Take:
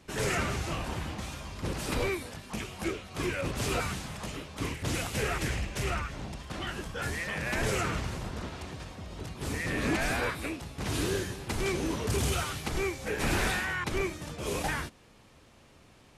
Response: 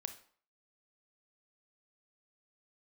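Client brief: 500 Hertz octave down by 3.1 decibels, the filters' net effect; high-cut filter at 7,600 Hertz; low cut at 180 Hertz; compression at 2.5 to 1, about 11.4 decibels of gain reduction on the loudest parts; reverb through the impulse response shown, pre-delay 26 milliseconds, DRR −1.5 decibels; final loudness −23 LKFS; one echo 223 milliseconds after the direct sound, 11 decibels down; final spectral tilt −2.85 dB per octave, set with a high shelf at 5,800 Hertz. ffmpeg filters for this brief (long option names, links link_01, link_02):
-filter_complex "[0:a]highpass=180,lowpass=7600,equalizer=frequency=500:width_type=o:gain=-4,highshelf=frequency=5800:gain=7,acompressor=threshold=-45dB:ratio=2.5,aecho=1:1:223:0.282,asplit=2[link_01][link_02];[1:a]atrim=start_sample=2205,adelay=26[link_03];[link_02][link_03]afir=irnorm=-1:irlink=0,volume=4dB[link_04];[link_01][link_04]amix=inputs=2:normalize=0,volume=16dB"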